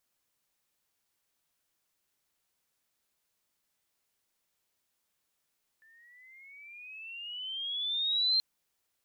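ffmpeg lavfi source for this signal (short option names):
-f lavfi -i "aevalsrc='pow(10,(-23+35.5*(t/2.58-1))/20)*sin(2*PI*1760*2.58/(15*log(2)/12)*(exp(15*log(2)/12*t/2.58)-1))':d=2.58:s=44100"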